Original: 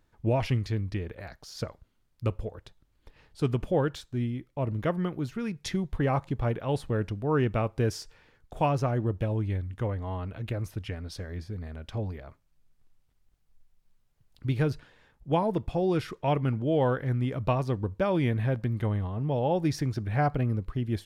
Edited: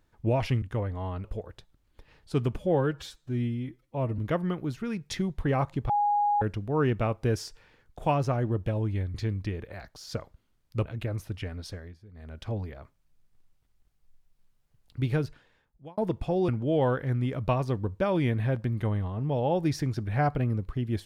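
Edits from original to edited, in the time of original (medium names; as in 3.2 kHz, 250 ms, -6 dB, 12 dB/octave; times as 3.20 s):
0.62–2.33 s: swap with 9.69–10.32 s
3.66–4.73 s: stretch 1.5×
6.44–6.96 s: bleep 825 Hz -21.5 dBFS
11.07–11.93 s: dip -14.5 dB, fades 0.34 s equal-power
14.54–15.44 s: fade out
15.95–16.48 s: delete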